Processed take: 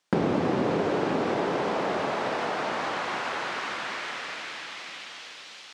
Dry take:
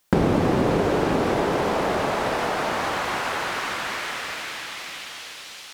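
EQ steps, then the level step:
high-pass filter 150 Hz 12 dB per octave
high-frequency loss of the air 120 metres
high-shelf EQ 5,800 Hz +8.5 dB
−4.0 dB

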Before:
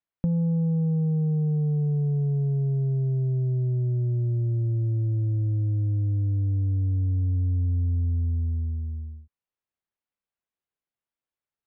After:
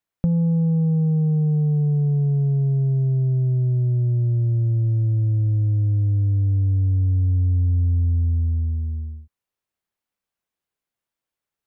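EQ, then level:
dynamic equaliser 340 Hz, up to −5 dB, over −42 dBFS, Q 1.4
+5.5 dB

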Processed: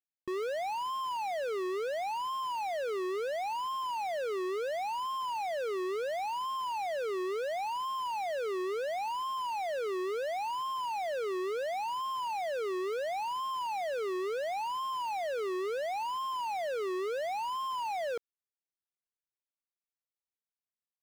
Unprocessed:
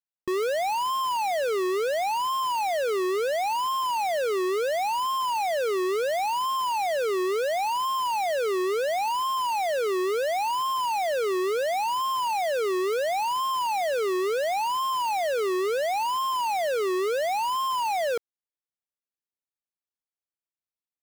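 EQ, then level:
high-shelf EQ 6,200 Hz −8.5 dB
−8.0 dB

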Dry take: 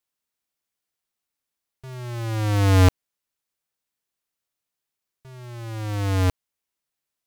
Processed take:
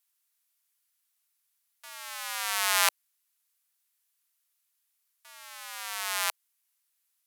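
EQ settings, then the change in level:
Bessel high-pass filter 1,300 Hz, order 8
parametric band 12,000 Hz +8.5 dB 0.93 octaves
+4.0 dB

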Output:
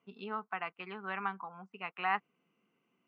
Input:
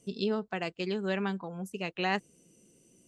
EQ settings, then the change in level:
loudspeaker in its box 300–2,000 Hz, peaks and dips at 330 Hz −9 dB, 600 Hz −4 dB, 940 Hz −9 dB, 1,700 Hz −10 dB
low shelf with overshoot 720 Hz −10 dB, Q 3
+5.0 dB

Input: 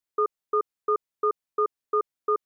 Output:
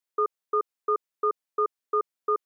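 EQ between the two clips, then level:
high-pass filter 290 Hz 6 dB per octave
0.0 dB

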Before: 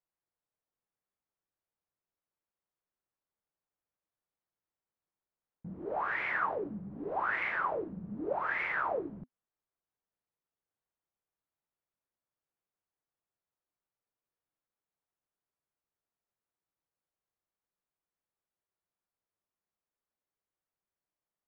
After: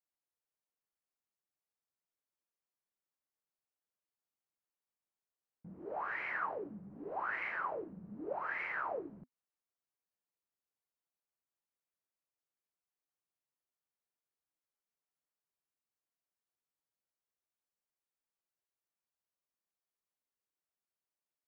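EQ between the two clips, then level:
low-shelf EQ 130 Hz −7 dB
notch filter 3,500 Hz, Q 5.6
−5.5 dB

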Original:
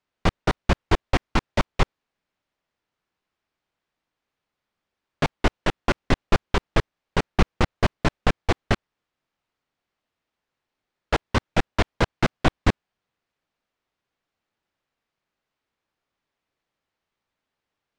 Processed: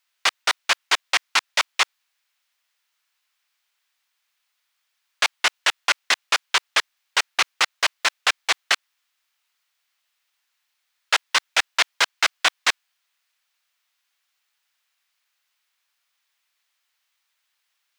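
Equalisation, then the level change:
Bessel high-pass filter 1,500 Hz, order 2
spectral tilt +2.5 dB per octave
+8.0 dB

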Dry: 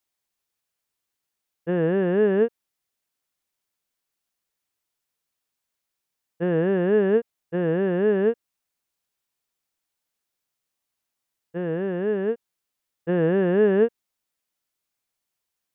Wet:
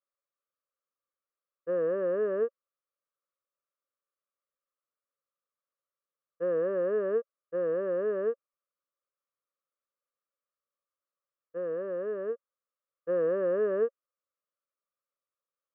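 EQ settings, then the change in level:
pair of resonant band-passes 810 Hz, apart 1.1 octaves
high-frequency loss of the air 170 metres
+2.5 dB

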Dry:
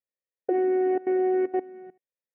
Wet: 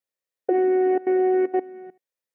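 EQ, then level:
low-shelf EQ 110 Hz −11 dB
+4.5 dB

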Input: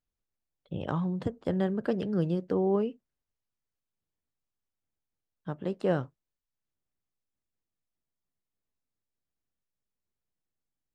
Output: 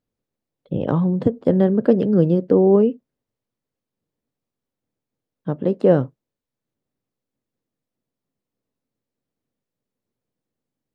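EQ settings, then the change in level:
graphic EQ with 10 bands 125 Hz +10 dB, 250 Hz +12 dB, 500 Hz +12 dB, 1,000 Hz +4 dB, 2,000 Hz +3 dB, 4,000 Hz +3 dB
−1.0 dB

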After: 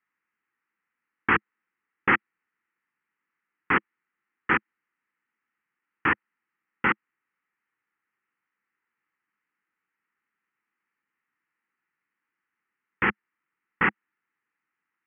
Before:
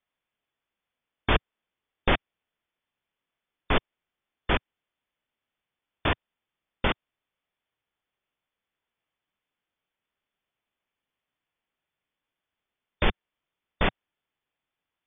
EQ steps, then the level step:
loudspeaker in its box 160–3,100 Hz, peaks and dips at 210 Hz +4 dB, 330 Hz +6 dB, 520 Hz +6 dB, 830 Hz +5 dB, 1,300 Hz +6 dB, 1,900 Hz +7 dB
high-shelf EQ 2,400 Hz +9 dB
phaser with its sweep stopped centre 1,500 Hz, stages 4
0.0 dB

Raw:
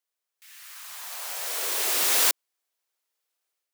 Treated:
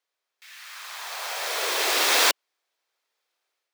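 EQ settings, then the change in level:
three-way crossover with the lows and the highs turned down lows −16 dB, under 300 Hz, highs −13 dB, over 5,400 Hz
low-shelf EQ 200 Hz +6.5 dB
notch filter 2,900 Hz, Q 23
+7.5 dB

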